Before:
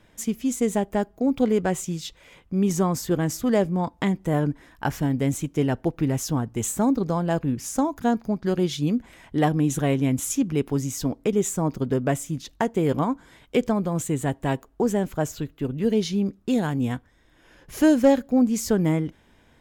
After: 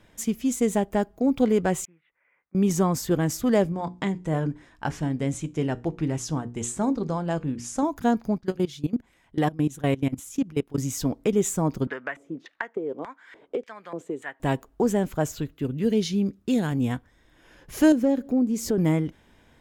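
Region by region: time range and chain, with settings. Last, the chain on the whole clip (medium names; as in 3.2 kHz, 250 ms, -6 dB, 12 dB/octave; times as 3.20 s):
1.85–2.55 s: steep low-pass 2.1 kHz 48 dB/octave + differentiator
3.72–7.83 s: low-pass 9.4 kHz 24 dB/octave + hum notches 60/120/180/240/300/360/420/480 Hz + feedback comb 78 Hz, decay 0.26 s, mix 40%
8.38–10.78 s: level held to a coarse grid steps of 21 dB + band-stop 640 Hz, Q 18
11.87–14.40 s: high-pass 290 Hz 6 dB/octave + LFO band-pass square 1.7 Hz 420–1800 Hz + three bands compressed up and down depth 100%
15.54–16.72 s: high-pass 46 Hz + peaking EQ 850 Hz -5 dB 1.3 oct
17.92–18.78 s: peaking EQ 340 Hz +13 dB 1.3 oct + compression 2:1, threshold -29 dBFS
whole clip: none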